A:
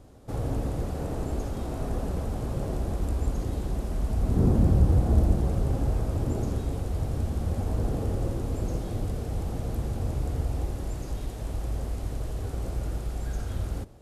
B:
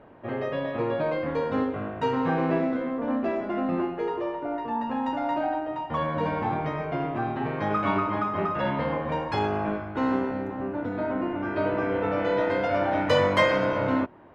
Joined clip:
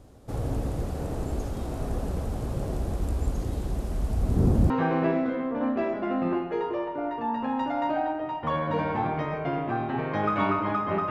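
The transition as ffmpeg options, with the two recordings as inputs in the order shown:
ffmpeg -i cue0.wav -i cue1.wav -filter_complex "[0:a]apad=whole_dur=11.1,atrim=end=11.1,atrim=end=4.702[link_01];[1:a]atrim=start=2.168:end=8.57[link_02];[link_01][link_02]acrossfade=duration=0.004:curve1=hsin:curve2=hsin" out.wav

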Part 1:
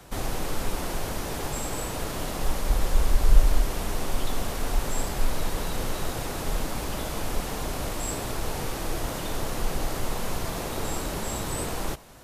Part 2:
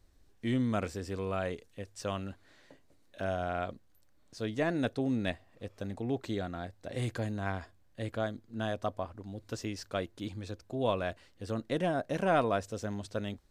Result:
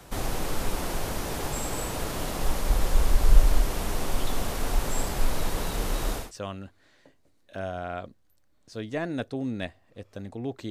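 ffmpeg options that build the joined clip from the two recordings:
ffmpeg -i cue0.wav -i cue1.wav -filter_complex "[0:a]asettb=1/sr,asplit=3[link_01][link_02][link_03];[link_01]atrim=end=5.714[link_04];[link_02]atrim=start=5.71:end=6.32,asetpts=PTS-STARTPTS,afade=type=in:duration=0.004:curve=qsin,afade=type=out:start_time=0.606:duration=0.004:curve=qsin,afreqshift=-48[link_05];[link_03]atrim=start=6.316[link_06];[link_04][link_05]acrossfade=duration=0.004:curve1=hsin:curve2=qsin[link_07];[link_07][link_06]acrossfade=duration=0.004:curve1=qsin:curve2=hsin,apad=whole_dur=10.7,atrim=end=10.7,atrim=end=6.32,asetpts=PTS-STARTPTS[link_08];[1:a]atrim=start=1.79:end=6.35,asetpts=PTS-STARTPTS[link_09];[link_08][link_09]acrossfade=duration=0.18:curve1=tri:curve2=tri" out.wav

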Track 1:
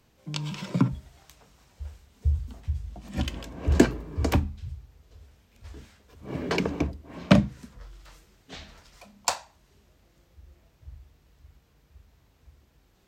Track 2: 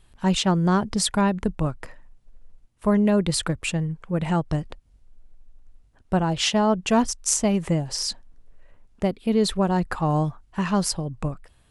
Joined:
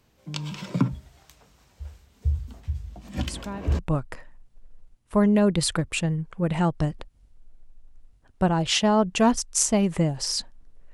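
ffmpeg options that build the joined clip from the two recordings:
ffmpeg -i cue0.wav -i cue1.wav -filter_complex "[1:a]asplit=2[link_01][link_02];[0:a]apad=whole_dur=10.93,atrim=end=10.93,atrim=end=3.792[link_03];[link_02]atrim=start=1.498:end=8.64[link_04];[link_01]atrim=start=0.98:end=1.5,asetpts=PTS-STARTPTS,volume=-14.5dB,afade=type=in:duration=0.004:curve=hsin,afade=type=out:start_time=0.516:duration=0.004:curve=hsin,adelay=3270[link_05];[link_03][link_04]acrossfade=duration=0.004:curve1=hsin:curve2=hsin[link_06];[link_06][link_05]amix=inputs=2:normalize=0" out.wav

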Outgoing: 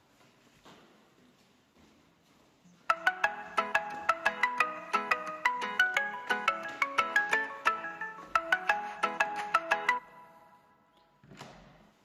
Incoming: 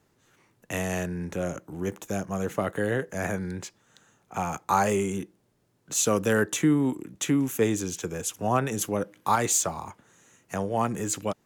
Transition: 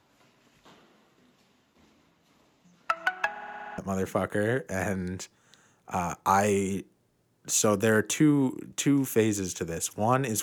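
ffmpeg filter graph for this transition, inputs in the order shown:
ffmpeg -i cue0.wav -i cue1.wav -filter_complex "[0:a]apad=whole_dur=10.42,atrim=end=10.42,asplit=8[link_01][link_02][link_03][link_04][link_05][link_06][link_07][link_08];[link_01]atrim=end=3.362[link_09];[link_02]atrim=start=3.298:end=3.362[link_10];[link_03]atrim=start=3.298:end=3.362[link_11];[link_04]atrim=start=3.298:end=3.362[link_12];[link_05]atrim=start=3.298:end=3.362[link_13];[link_06]atrim=start=3.298:end=3.362[link_14];[link_07]atrim=start=3.298:end=3.362[link_15];[link_08]atrim=start=3.298:end=3.362[link_16];[1:a]atrim=start=2.208:end=8.85[link_17];[link_09][link_10]acrossfade=duration=0.004:curve1=hsin:curve2=hsin[link_18];[link_18][link_11]acrossfade=duration=0.004:curve1=hsin:curve2=hsin[link_19];[link_19][link_12]acrossfade=duration=0.004:curve1=hsin:curve2=hsin[link_20];[link_20][link_13]acrossfade=duration=0.004:curve1=hsin:curve2=hsin[link_21];[link_21][link_14]acrossfade=duration=0.004:curve1=hsin:curve2=hsin[link_22];[link_22][link_15]acrossfade=duration=0.004:curve1=hsin:curve2=hsin[link_23];[link_23][link_16]acrossfade=duration=0.004:curve1=hsin:curve2=hsin[link_24];[link_24][link_17]acrossfade=duration=0.004:curve1=hsin:curve2=hsin" out.wav

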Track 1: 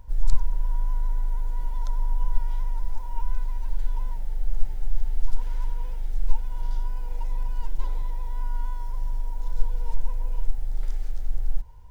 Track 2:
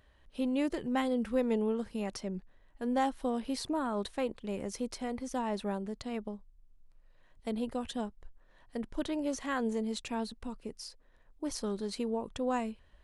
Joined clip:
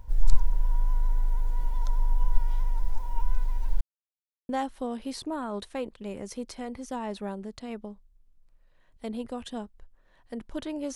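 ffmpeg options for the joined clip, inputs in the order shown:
ffmpeg -i cue0.wav -i cue1.wav -filter_complex "[0:a]apad=whole_dur=10.95,atrim=end=10.95,asplit=2[link_01][link_02];[link_01]atrim=end=3.81,asetpts=PTS-STARTPTS,afade=type=out:start_time=3.806:duration=0.004:curve=hsin[link_03];[link_02]atrim=start=3.81:end=4.49,asetpts=PTS-STARTPTS,volume=0[link_04];[1:a]atrim=start=2.92:end=9.38,asetpts=PTS-STARTPTS,afade=type=in:duration=0.004:curve=hsin[link_05];[link_03][link_04][link_05]concat=n=3:v=0:a=1" out.wav

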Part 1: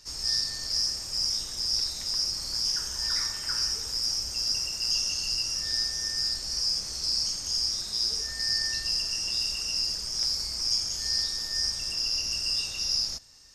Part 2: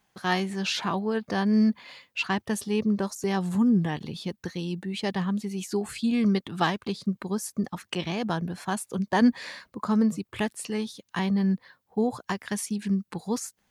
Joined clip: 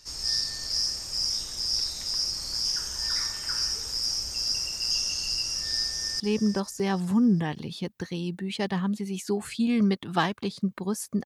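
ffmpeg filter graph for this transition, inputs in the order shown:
ffmpeg -i cue0.wav -i cue1.wav -filter_complex "[0:a]apad=whole_dur=11.25,atrim=end=11.25,atrim=end=6.202[link_01];[1:a]atrim=start=2.638:end=7.69[link_02];[link_01][link_02]acrossfade=duration=0.004:curve1=hsin:curve2=hsin,asplit=2[link_03][link_04];[link_04]afade=type=in:start_time=5.83:duration=0.01,afade=type=out:start_time=6.2:duration=0.01,aecho=0:1:400|800|1200|1600:0.281838|0.0986434|0.0345252|0.0120838[link_05];[link_03][link_05]amix=inputs=2:normalize=0" out.wav

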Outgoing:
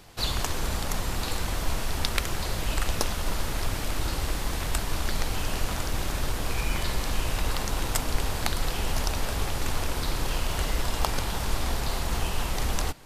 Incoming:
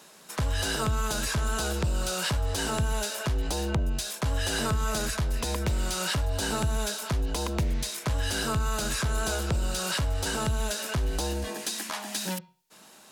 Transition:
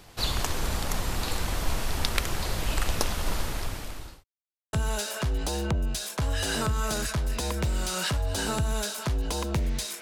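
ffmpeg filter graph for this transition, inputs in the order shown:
ffmpeg -i cue0.wav -i cue1.wav -filter_complex "[0:a]apad=whole_dur=10.01,atrim=end=10.01,asplit=2[link_01][link_02];[link_01]atrim=end=4.24,asetpts=PTS-STARTPTS,afade=type=out:start_time=3.35:duration=0.89[link_03];[link_02]atrim=start=4.24:end=4.73,asetpts=PTS-STARTPTS,volume=0[link_04];[1:a]atrim=start=2.77:end=8.05,asetpts=PTS-STARTPTS,afade=type=in:duration=0.004:curve=hsin[link_05];[link_03][link_04][link_05]concat=n=3:v=0:a=1" out.wav

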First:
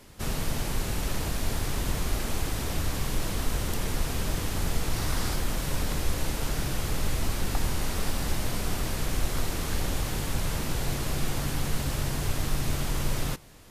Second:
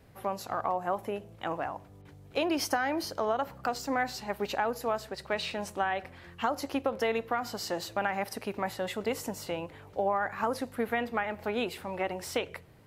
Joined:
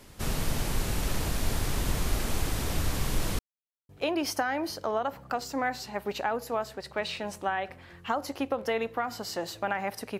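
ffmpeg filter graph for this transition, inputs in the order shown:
ffmpeg -i cue0.wav -i cue1.wav -filter_complex "[0:a]apad=whole_dur=10.19,atrim=end=10.19,asplit=2[link_01][link_02];[link_01]atrim=end=3.39,asetpts=PTS-STARTPTS,afade=type=out:start_time=3.386:duration=0.004:curve=hsin[link_03];[link_02]atrim=start=3.39:end=3.89,asetpts=PTS-STARTPTS,volume=0[link_04];[1:a]atrim=start=2.23:end=8.53,asetpts=PTS-STARTPTS,afade=type=in:duration=0.004:curve=hsin[link_05];[link_03][link_04][link_05]concat=n=3:v=0:a=1" out.wav

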